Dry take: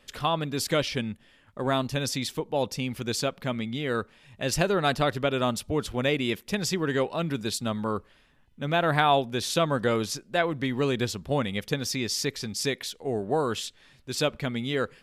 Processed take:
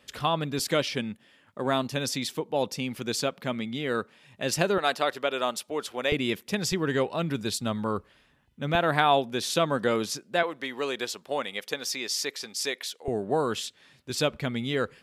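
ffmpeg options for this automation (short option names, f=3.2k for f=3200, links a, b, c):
-af "asetnsamples=n=441:p=0,asendcmd='0.59 highpass f 150;4.78 highpass f 430;6.12 highpass f 110;6.72 highpass f 51;8.75 highpass f 160;10.43 highpass f 470;13.08 highpass f 120;14.1 highpass f 48',highpass=61"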